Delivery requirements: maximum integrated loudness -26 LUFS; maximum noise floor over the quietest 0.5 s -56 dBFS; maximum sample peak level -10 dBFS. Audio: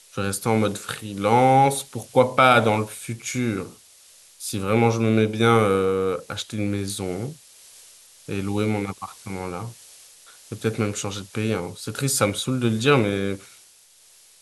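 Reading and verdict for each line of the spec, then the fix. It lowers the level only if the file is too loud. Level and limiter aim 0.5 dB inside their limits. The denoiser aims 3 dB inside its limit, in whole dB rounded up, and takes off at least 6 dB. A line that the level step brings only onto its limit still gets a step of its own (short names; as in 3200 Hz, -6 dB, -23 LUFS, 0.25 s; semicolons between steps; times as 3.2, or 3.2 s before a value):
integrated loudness -22.5 LUFS: fail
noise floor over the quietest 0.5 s -54 dBFS: fail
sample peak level -3.5 dBFS: fail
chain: gain -4 dB; limiter -10.5 dBFS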